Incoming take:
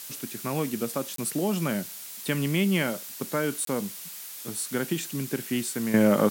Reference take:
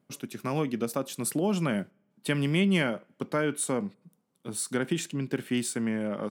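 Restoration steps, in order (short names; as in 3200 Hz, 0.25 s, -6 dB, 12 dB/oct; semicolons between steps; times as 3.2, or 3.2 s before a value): interpolate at 1.16/3.65, 23 ms; noise print and reduce 28 dB; gain correction -11.5 dB, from 5.94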